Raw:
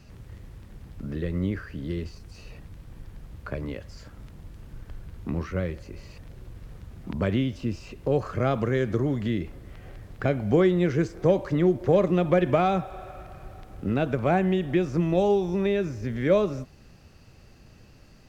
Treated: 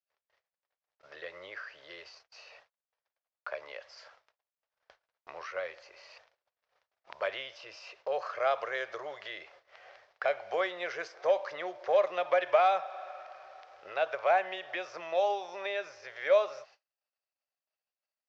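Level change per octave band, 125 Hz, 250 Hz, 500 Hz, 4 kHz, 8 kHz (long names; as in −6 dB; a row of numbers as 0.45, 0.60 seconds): below −40 dB, −28.5 dB, −6.0 dB, −1.0 dB, can't be measured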